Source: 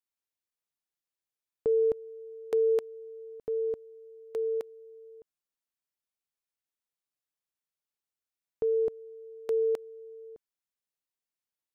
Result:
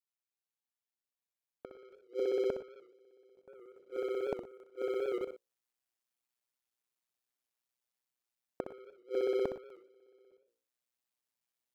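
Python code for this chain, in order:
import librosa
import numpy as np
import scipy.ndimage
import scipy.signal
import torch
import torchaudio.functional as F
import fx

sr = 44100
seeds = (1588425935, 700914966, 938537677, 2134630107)

y = fx.local_reverse(x, sr, ms=61.0)
y = fx.low_shelf(y, sr, hz=91.0, db=-8.0)
y = fx.hum_notches(y, sr, base_hz=60, count=9)
y = fx.leveller(y, sr, passes=3)
y = fx.rider(y, sr, range_db=4, speed_s=2.0)
y = fx.gate_flip(y, sr, shuts_db=-28.0, range_db=-34)
y = y * np.sin(2.0 * np.pi * 61.0 * np.arange(len(y)) / sr)
y = fx.echo_multitap(y, sr, ms=(63, 104, 120), db=(-8.5, -18.0, -19.0))
y = fx.record_warp(y, sr, rpm=78.0, depth_cents=100.0)
y = F.gain(torch.from_numpy(y), 6.5).numpy()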